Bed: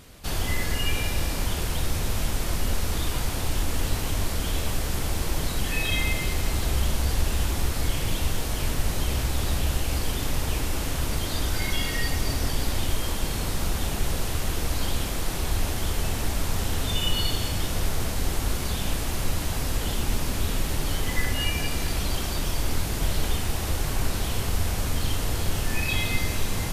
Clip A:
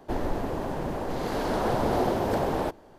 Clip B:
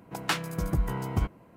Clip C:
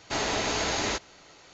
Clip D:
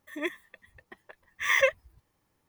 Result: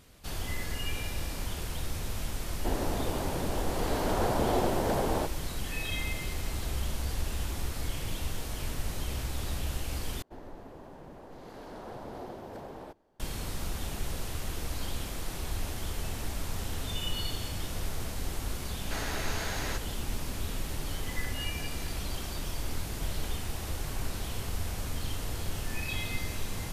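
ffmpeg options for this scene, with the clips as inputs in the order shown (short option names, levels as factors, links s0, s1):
-filter_complex "[1:a]asplit=2[s0][s1];[0:a]volume=0.376[s2];[3:a]equalizer=f=1600:w=2.7:g=7[s3];[s2]asplit=2[s4][s5];[s4]atrim=end=10.224[s6];[s1]atrim=end=2.98,asetpts=PTS-STARTPTS,volume=0.141[s7];[s5]atrim=start=13.196[s8];[s0]atrim=end=2.98,asetpts=PTS-STARTPTS,volume=0.708,afade=t=in:d=0.004:c=hsin,afade=t=out:st=2.976:d=0.004:c=hsin,adelay=2560[s9];[s3]atrim=end=1.53,asetpts=PTS-STARTPTS,volume=0.316,afade=t=in:d=0.004:c=hsin,afade=t=out:st=1.526:d=0.004:c=hsin,adelay=18800[s10];[s6][s7]acrossfade=d=0.004:c1=hsin:c2=hsin[s11];[s11][s8]acrossfade=d=0.004:c1=hsin:c2=hsin[s12];[s12][s9][s10]amix=inputs=3:normalize=0"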